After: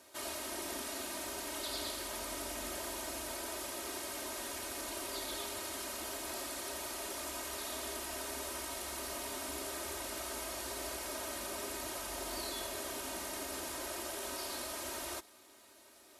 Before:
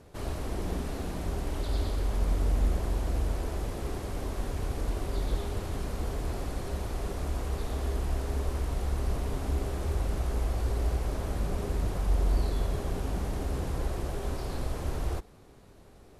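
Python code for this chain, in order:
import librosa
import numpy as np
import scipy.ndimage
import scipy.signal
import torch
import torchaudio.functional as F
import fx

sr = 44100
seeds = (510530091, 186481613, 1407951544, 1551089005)

y = fx.highpass(x, sr, hz=350.0, slope=6)
y = fx.tilt_eq(y, sr, slope=3.0)
y = y + 0.8 * np.pad(y, (int(3.2 * sr / 1000.0), 0))[:len(y)]
y = y * librosa.db_to_amplitude(-3.0)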